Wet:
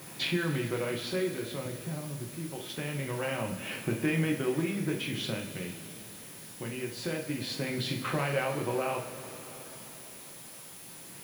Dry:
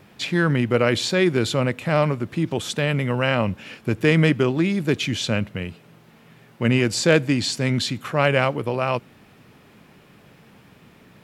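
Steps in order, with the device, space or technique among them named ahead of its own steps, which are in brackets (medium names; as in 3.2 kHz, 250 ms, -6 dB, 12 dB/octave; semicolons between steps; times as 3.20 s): 1.65–2.29 s: RIAA curve playback; medium wave at night (band-pass 130–3600 Hz; compression 5:1, threshold -31 dBFS, peak gain reduction 19 dB; tremolo 0.24 Hz, depth 66%; whistle 10 kHz -54 dBFS; white noise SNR 15 dB); two-slope reverb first 0.45 s, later 4.9 s, from -18 dB, DRR -0.5 dB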